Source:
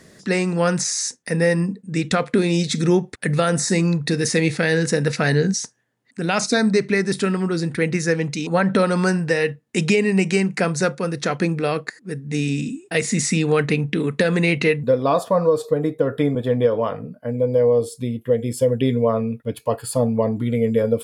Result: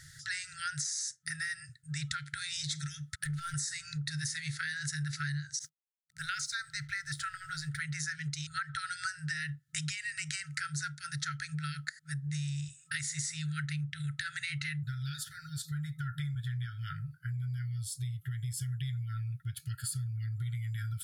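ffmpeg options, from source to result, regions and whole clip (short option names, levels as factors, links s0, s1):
-filter_complex "[0:a]asettb=1/sr,asplit=3[s0][s1][s2];[s0]atrim=end=3.004[s3];[s1]atrim=start=3:end=3.54,asetpts=PTS-STARTPTS,afade=t=in:d=0.004:c=qsin,afade=t=out:st=0.536:d=0.004:c=qsin,acompressor=threshold=0.1:ratio=10:attack=3.2:release=140:knee=1:detection=peak,asoftclip=type=hard:threshold=0.075[s4];[s2]atrim=start=3.536[s5];[s3][s4]acrossfade=d=0.004:c1=hsin:c2=qsin[s6];[s6][s5]acrossfade=d=0.004:c1=qsin:c2=hsin,asettb=1/sr,asplit=3[s7][s8][s9];[s7]atrim=end=5.594[s10];[s8]atrim=start=5.59:end=7.79,asetpts=PTS-STARTPTS,afade=t=in:d=0.004:c=qsin,afade=t=out:st=2.196:d=0.004:c=qsin,aeval=exprs='sgn(val(0))*max(abs(val(0))-0.00335,0)':c=same,adynamicequalizer=threshold=0.0158:dfrequency=2000:dqfactor=0.7:tfrequency=2000:tqfactor=0.7:attack=5:release=100:ratio=0.375:range=3:mode=cutabove:tftype=highshelf[s11];[s9]atrim=start=7.786[s12];[s10][s11]acrossfade=d=0.004:c1=hsin:c2=qsin[s13];[s13][s12]acrossfade=d=0.004:c1=qsin:c2=hsin,afftfilt=real='re*(1-between(b*sr/4096,160,1300))':imag='im*(1-between(b*sr/4096,160,1300))':win_size=4096:overlap=0.75,equalizer=f=2500:w=3.4:g=-12.5,acompressor=threshold=0.02:ratio=6"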